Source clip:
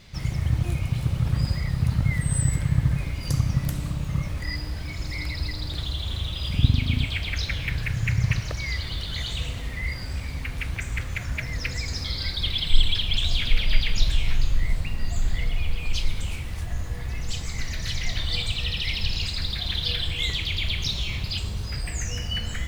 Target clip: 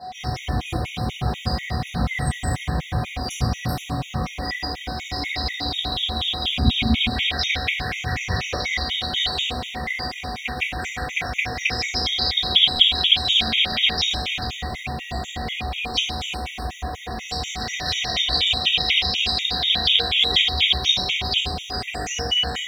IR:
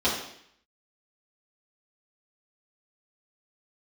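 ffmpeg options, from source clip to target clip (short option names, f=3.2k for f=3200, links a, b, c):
-filter_complex "[0:a]highpass=f=360:p=1,afreqshift=-15,aeval=exprs='val(0)+0.00501*sin(2*PI*740*n/s)':c=same[a];[1:a]atrim=start_sample=2205[b];[a][b]afir=irnorm=-1:irlink=0,afftfilt=real='re*gt(sin(2*PI*4.1*pts/sr)*(1-2*mod(floor(b*sr/1024/1900),2)),0)':imag='im*gt(sin(2*PI*4.1*pts/sr)*(1-2*mod(floor(b*sr/1024/1900),2)),0)':win_size=1024:overlap=0.75,volume=-1.5dB"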